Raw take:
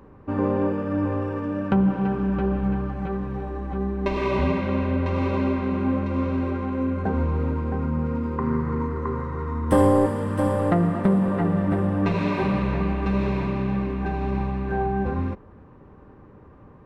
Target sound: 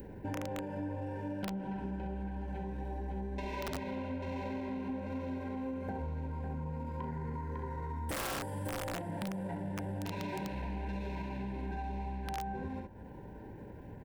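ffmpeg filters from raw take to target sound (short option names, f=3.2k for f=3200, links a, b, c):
-filter_complex "[0:a]aemphasis=mode=production:type=50fm,asoftclip=type=tanh:threshold=-16dB,adynamicequalizer=threshold=0.00447:dfrequency=970:dqfactor=2.9:tfrequency=970:tqfactor=2.9:attack=5:release=100:ratio=0.375:range=3:mode=boostabove:tftype=bell,asplit=2[a][b];[b]aecho=0:1:19|50|78:0.376|0.473|0.562[c];[a][c]amix=inputs=2:normalize=0,acompressor=mode=upward:threshold=-34dB:ratio=2.5,asuperstop=centerf=1200:order=8:qfactor=2.8,atempo=1.2,aeval=exprs='(mod(4.47*val(0)+1,2)-1)/4.47':c=same,acompressor=threshold=-30dB:ratio=6,volume=-6dB"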